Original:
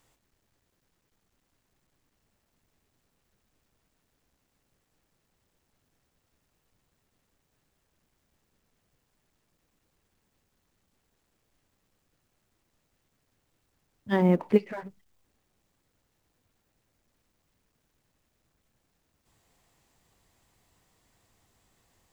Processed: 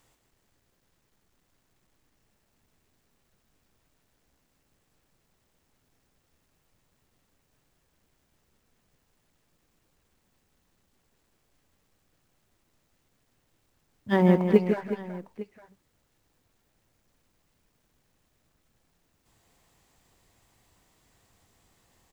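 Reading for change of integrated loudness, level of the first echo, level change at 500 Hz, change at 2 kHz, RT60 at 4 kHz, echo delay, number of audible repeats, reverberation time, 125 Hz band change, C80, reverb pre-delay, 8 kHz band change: +1.5 dB, −8.0 dB, +3.0 dB, +3.0 dB, no reverb audible, 157 ms, 3, no reverb audible, +3.0 dB, no reverb audible, no reverb audible, can't be measured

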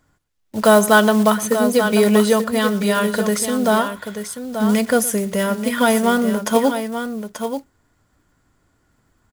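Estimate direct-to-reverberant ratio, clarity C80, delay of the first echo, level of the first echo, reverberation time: no reverb audible, no reverb audible, 115 ms, −18.5 dB, no reverb audible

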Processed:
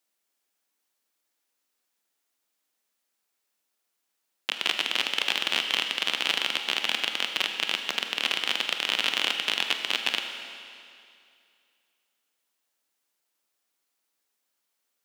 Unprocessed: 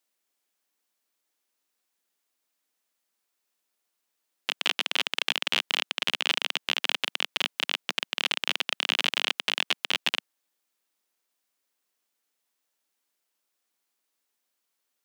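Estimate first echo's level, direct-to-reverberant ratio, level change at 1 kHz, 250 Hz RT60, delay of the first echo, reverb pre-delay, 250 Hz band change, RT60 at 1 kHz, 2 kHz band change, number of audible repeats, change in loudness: no echo audible, 5.0 dB, +1.5 dB, 2.4 s, no echo audible, 26 ms, +1.0 dB, 2.4 s, +1.0 dB, no echo audible, +1.0 dB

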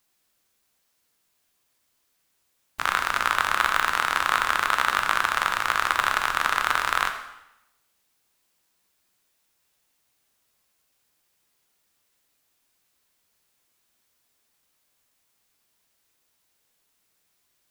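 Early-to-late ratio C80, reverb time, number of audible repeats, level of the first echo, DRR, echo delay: 10.5 dB, 0.90 s, no echo audible, no echo audible, 5.0 dB, no echo audible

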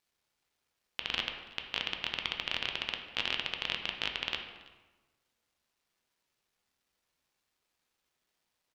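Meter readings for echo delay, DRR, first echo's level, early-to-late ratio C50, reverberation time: 330 ms, 3.0 dB, −23.0 dB, 6.0 dB, 1.2 s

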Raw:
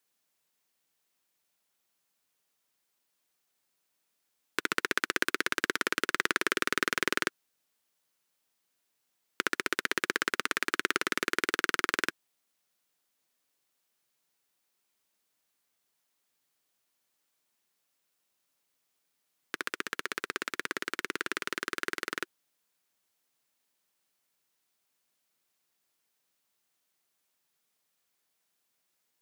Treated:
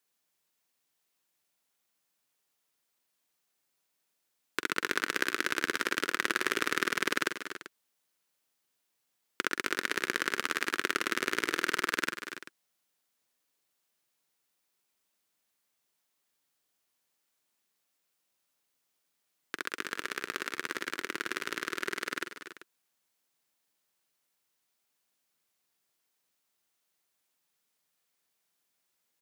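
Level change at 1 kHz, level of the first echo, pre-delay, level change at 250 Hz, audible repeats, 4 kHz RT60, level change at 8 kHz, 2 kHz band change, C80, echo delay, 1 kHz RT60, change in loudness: −1.0 dB, −11.0 dB, no reverb audible, −0.5 dB, 4, no reverb audible, −0.5 dB, −0.5 dB, no reverb audible, 45 ms, no reverb audible, −1.0 dB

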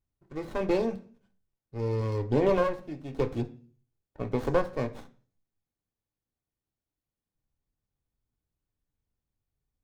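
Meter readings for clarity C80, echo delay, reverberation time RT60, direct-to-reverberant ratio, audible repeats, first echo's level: 20.5 dB, no echo audible, 0.45 s, 4.5 dB, no echo audible, no echo audible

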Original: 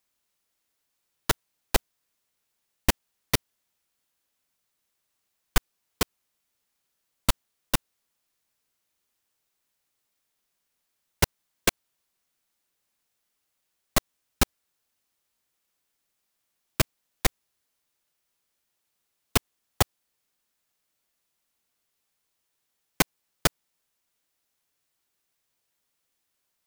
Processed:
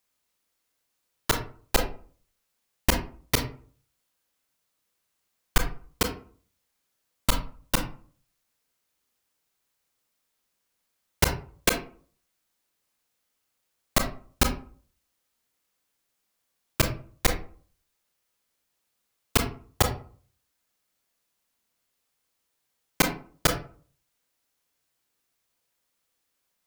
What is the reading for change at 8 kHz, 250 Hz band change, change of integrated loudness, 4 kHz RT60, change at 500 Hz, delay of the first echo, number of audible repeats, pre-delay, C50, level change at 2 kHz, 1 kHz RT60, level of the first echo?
+0.5 dB, +2.0 dB, +0.5 dB, 0.25 s, +2.0 dB, no echo audible, no echo audible, 26 ms, 9.0 dB, +1.5 dB, 0.45 s, no echo audible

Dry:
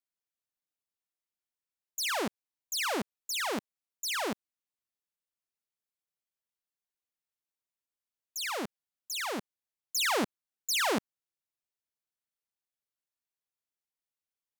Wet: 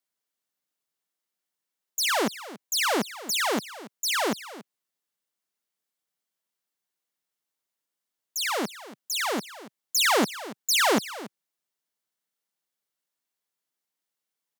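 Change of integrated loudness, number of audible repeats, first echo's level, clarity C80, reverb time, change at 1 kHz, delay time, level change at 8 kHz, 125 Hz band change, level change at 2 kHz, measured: +7.0 dB, 1, −16.0 dB, no reverb audible, no reverb audible, +7.0 dB, 282 ms, +7.0 dB, +6.0 dB, +6.5 dB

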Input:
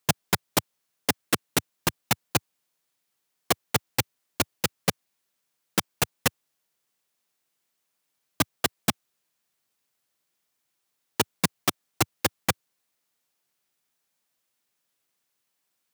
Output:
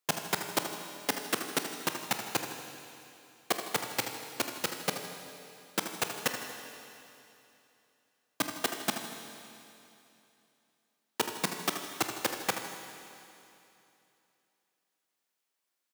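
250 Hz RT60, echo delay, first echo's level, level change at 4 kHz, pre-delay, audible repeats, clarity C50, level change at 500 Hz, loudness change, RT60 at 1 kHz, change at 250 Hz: 2.9 s, 79 ms, −9.5 dB, −5.0 dB, 22 ms, 2, 4.5 dB, −4.5 dB, −6.0 dB, 2.9 s, −7.0 dB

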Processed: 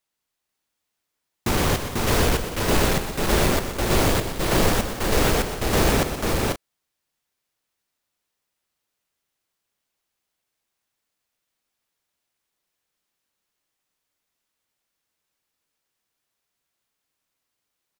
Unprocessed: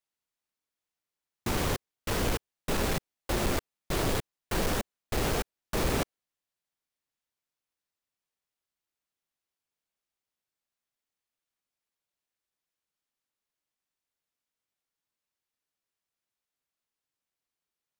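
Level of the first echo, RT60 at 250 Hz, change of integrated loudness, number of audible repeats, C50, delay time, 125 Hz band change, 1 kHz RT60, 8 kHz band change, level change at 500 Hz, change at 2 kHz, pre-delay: −10.5 dB, no reverb audible, +9.5 dB, 5, no reverb audible, 123 ms, +10.0 dB, no reverb audible, +10.0 dB, +10.0 dB, +10.0 dB, no reverb audible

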